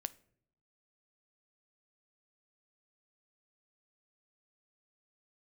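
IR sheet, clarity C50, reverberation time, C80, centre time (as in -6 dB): 20.5 dB, 0.65 s, 25.0 dB, 2 ms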